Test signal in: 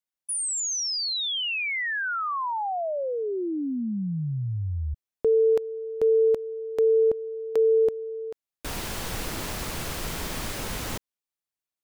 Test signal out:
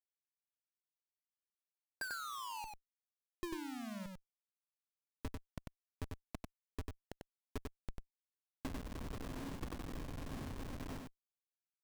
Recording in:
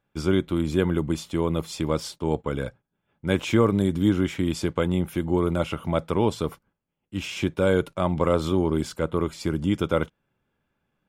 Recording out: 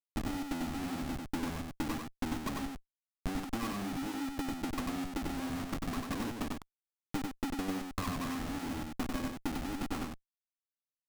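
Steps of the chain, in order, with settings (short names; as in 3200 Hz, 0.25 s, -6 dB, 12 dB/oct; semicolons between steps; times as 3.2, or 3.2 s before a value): double band-pass 540 Hz, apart 2 oct; Schmitt trigger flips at -40.5 dBFS; transient shaper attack +8 dB, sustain +3 dB; on a send: echo 95 ms -3.5 dB; on the sum: gain -3.5 dB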